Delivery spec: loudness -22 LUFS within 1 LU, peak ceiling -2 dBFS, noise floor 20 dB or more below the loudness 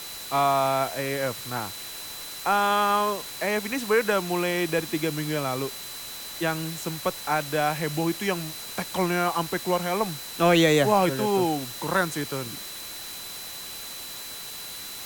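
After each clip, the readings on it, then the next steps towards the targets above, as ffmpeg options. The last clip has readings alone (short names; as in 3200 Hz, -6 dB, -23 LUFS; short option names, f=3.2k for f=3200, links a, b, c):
steady tone 4000 Hz; tone level -41 dBFS; noise floor -38 dBFS; noise floor target -46 dBFS; loudness -26.0 LUFS; peak -7.5 dBFS; loudness target -22.0 LUFS
-> -af "bandreject=f=4k:w=30"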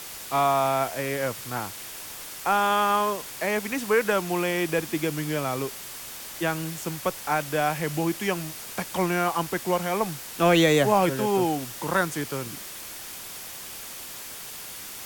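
steady tone none; noise floor -39 dBFS; noise floor target -47 dBFS
-> -af "afftdn=nr=8:nf=-39"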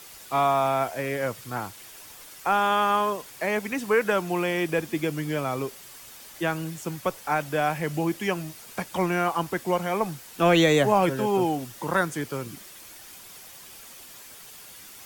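noise floor -46 dBFS; loudness -26.0 LUFS; peak -7.5 dBFS; loudness target -22.0 LUFS
-> -af "volume=4dB"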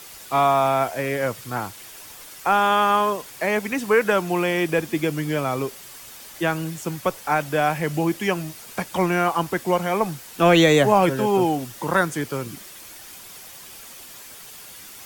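loudness -22.0 LUFS; peak -3.5 dBFS; noise floor -42 dBFS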